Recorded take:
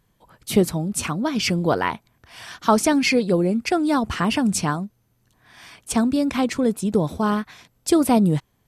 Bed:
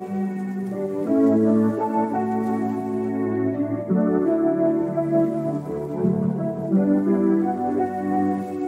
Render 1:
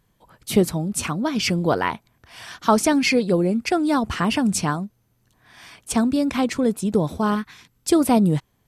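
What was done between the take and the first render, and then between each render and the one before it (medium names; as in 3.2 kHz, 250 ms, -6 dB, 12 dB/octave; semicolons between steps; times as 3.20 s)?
7.35–7.89 s: peaking EQ 630 Hz -12.5 dB 0.58 oct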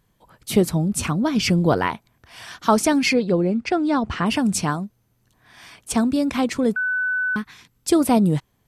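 0.72–1.87 s: bass shelf 230 Hz +7 dB; 3.13–4.26 s: distance through air 110 m; 6.76–7.36 s: bleep 1.5 kHz -19.5 dBFS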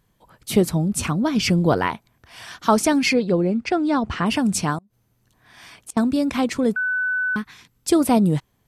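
4.78–5.97 s: inverted gate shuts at -21 dBFS, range -29 dB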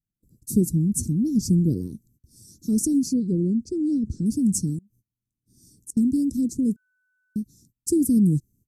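gate -53 dBFS, range -23 dB; inverse Chebyshev band-stop 690–3100 Hz, stop band 50 dB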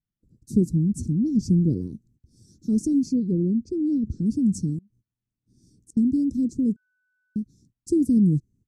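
low-pass 6.7 kHz 12 dB/octave; treble shelf 3.1 kHz -8.5 dB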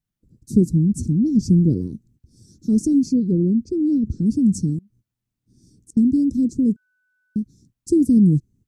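trim +4.5 dB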